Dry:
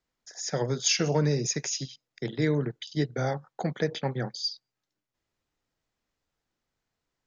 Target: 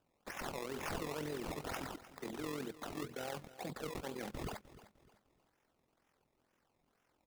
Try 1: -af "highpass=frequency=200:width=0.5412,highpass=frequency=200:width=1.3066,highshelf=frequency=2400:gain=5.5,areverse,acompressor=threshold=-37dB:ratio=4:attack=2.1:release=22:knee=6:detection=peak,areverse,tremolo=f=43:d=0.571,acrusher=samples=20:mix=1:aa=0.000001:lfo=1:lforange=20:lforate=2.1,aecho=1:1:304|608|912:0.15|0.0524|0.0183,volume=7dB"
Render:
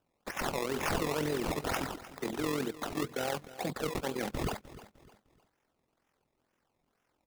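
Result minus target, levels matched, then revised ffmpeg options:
downward compressor: peak gain reduction −9 dB
-af "highpass=frequency=200:width=0.5412,highpass=frequency=200:width=1.3066,highshelf=frequency=2400:gain=5.5,areverse,acompressor=threshold=-49dB:ratio=4:attack=2.1:release=22:knee=6:detection=peak,areverse,tremolo=f=43:d=0.571,acrusher=samples=20:mix=1:aa=0.000001:lfo=1:lforange=20:lforate=2.1,aecho=1:1:304|608|912:0.15|0.0524|0.0183,volume=7dB"

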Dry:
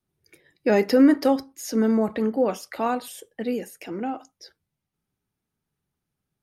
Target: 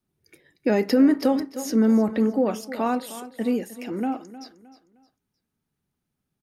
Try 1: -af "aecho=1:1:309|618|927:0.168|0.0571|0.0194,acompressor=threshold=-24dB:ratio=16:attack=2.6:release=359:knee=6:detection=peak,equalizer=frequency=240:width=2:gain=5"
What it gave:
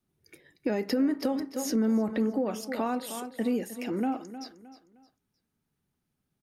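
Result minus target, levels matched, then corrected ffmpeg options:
downward compressor: peak gain reduction +9 dB
-af "aecho=1:1:309|618|927:0.168|0.0571|0.0194,acompressor=threshold=-14dB:ratio=16:attack=2.6:release=359:knee=6:detection=peak,equalizer=frequency=240:width=2:gain=5"

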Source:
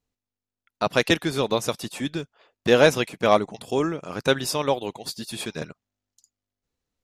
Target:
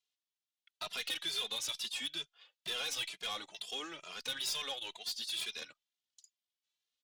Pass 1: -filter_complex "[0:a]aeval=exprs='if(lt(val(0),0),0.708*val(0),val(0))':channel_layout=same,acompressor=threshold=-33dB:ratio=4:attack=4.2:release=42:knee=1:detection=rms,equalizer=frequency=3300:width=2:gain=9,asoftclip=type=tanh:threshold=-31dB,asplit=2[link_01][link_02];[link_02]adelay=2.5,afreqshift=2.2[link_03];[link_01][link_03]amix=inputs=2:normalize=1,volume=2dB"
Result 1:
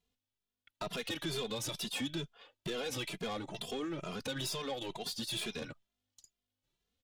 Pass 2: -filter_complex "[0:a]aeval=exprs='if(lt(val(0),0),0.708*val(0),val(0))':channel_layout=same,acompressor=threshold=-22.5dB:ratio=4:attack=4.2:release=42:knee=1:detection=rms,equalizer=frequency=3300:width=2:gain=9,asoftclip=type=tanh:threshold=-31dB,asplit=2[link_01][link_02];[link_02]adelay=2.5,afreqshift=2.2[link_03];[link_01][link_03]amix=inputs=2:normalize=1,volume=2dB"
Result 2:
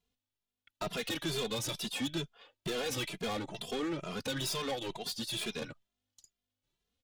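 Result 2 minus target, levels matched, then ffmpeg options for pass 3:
4,000 Hz band −3.0 dB
-filter_complex "[0:a]aeval=exprs='if(lt(val(0),0),0.708*val(0),val(0))':channel_layout=same,acompressor=threshold=-22.5dB:ratio=4:attack=4.2:release=42:knee=1:detection=rms,bandpass=frequency=4900:width_type=q:width=0.66:csg=0,equalizer=frequency=3300:width=2:gain=9,asoftclip=type=tanh:threshold=-31dB,asplit=2[link_01][link_02];[link_02]adelay=2.5,afreqshift=2.2[link_03];[link_01][link_03]amix=inputs=2:normalize=1,volume=2dB"

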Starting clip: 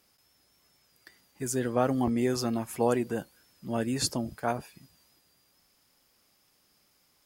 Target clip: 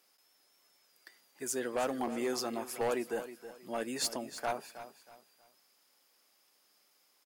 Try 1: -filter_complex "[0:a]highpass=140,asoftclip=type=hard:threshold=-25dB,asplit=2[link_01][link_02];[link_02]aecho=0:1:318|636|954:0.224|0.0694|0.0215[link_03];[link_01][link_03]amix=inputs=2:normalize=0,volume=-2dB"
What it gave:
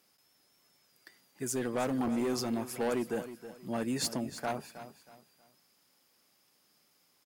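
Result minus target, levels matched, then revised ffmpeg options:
125 Hz band +10.0 dB
-filter_complex "[0:a]highpass=380,asoftclip=type=hard:threshold=-25dB,asplit=2[link_01][link_02];[link_02]aecho=0:1:318|636|954:0.224|0.0694|0.0215[link_03];[link_01][link_03]amix=inputs=2:normalize=0,volume=-2dB"

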